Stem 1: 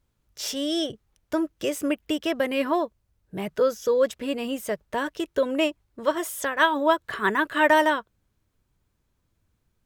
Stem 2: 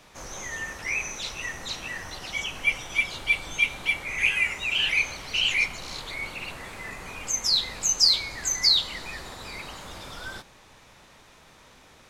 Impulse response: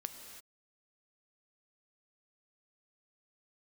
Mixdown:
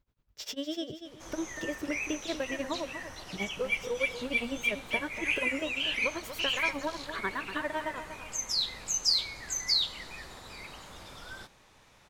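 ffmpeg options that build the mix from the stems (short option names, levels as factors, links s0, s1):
-filter_complex "[0:a]equalizer=f=10000:w=0.96:g=-13.5,tremolo=f=9.9:d=0.94,acompressor=threshold=0.0316:ratio=6,volume=0.891,asplit=2[s0][s1];[s1]volume=0.316[s2];[1:a]adelay=1050,volume=0.447[s3];[s2]aecho=0:1:240|480|720|960|1200:1|0.34|0.116|0.0393|0.0134[s4];[s0][s3][s4]amix=inputs=3:normalize=0"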